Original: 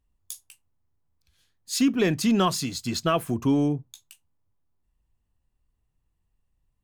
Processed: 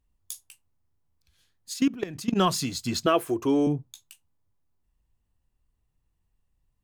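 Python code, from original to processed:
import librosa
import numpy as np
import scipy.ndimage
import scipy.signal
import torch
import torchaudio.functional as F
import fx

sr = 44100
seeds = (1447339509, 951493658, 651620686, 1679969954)

y = fx.level_steps(x, sr, step_db=19, at=(1.72, 2.35), fade=0.02)
y = fx.low_shelf_res(y, sr, hz=270.0, db=-8.0, q=3.0, at=(3.06, 3.67))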